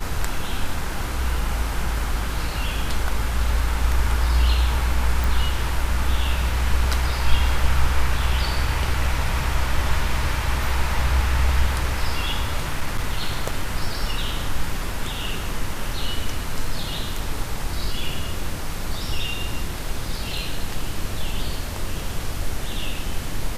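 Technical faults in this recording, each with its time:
5.24 s: pop
12.60–13.65 s: clipped -16 dBFS

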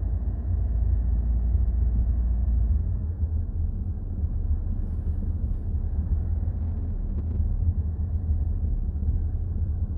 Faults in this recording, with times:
6.55–7.40 s: clipped -24 dBFS

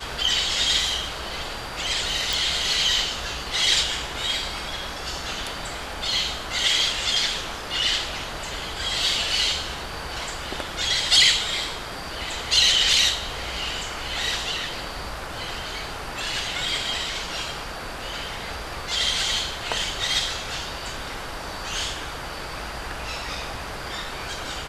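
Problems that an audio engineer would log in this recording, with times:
2.33 s: pop

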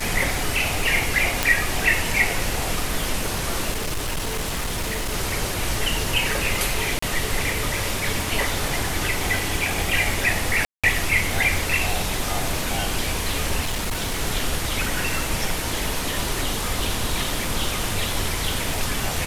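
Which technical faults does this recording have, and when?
crackle 490 per s -30 dBFS
1.43 s: pop
3.71–5.14 s: clipped -22 dBFS
6.99–7.02 s: dropout 34 ms
10.65–10.84 s: dropout 186 ms
13.60–14.21 s: clipped -21 dBFS

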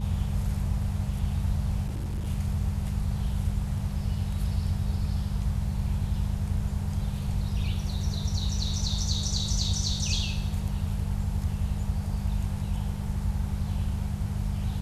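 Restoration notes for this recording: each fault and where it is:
hum 50 Hz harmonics 4 -32 dBFS
1.86–2.28 s: clipped -27.5 dBFS

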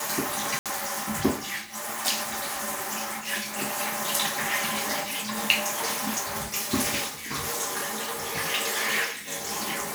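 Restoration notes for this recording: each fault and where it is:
0.59–0.66 s: dropout 67 ms

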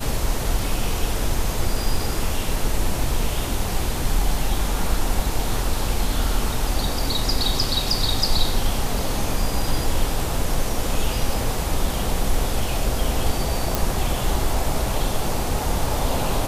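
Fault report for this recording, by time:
13.75 s: pop

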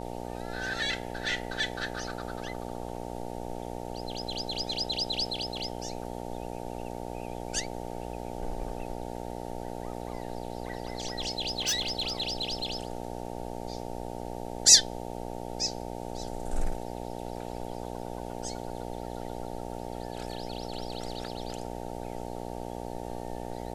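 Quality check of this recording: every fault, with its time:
buzz 60 Hz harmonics 15 -38 dBFS
11.43–12.65 s: clipped -23.5 dBFS

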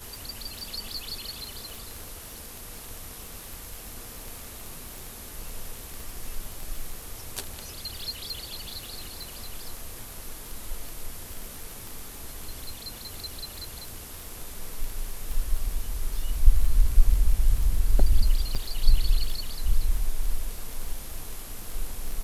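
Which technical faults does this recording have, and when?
crackle 26 per s -30 dBFS
18.55–18.56 s: dropout 6.3 ms

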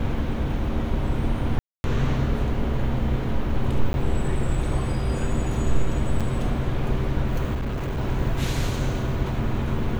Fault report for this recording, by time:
1.59–1.84 s: dropout 251 ms
3.93–3.94 s: dropout 11 ms
6.20–6.21 s: dropout 6.3 ms
7.54–7.99 s: clipped -23.5 dBFS

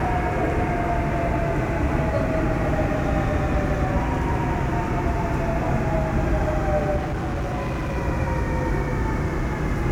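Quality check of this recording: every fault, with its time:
6.96–7.97 s: clipped -22.5 dBFS

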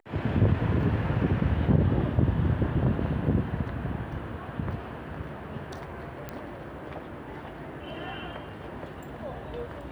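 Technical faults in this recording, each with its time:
6.29 s: pop -21 dBFS

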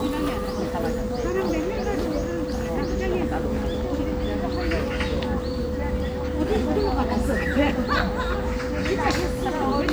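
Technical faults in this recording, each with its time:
whine 500 Hz -29 dBFS
7.99–8.00 s: dropout 5.2 ms

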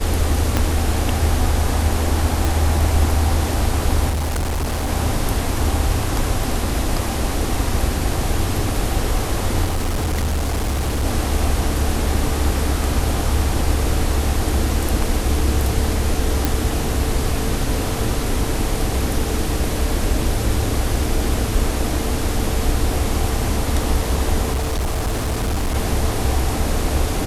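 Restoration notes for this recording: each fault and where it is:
0.57 s: pop -3 dBFS
2.45 s: pop
4.09–4.91 s: clipped -18 dBFS
9.64–11.05 s: clipped -16.5 dBFS
16.45 s: pop
24.52–25.76 s: clipped -17 dBFS

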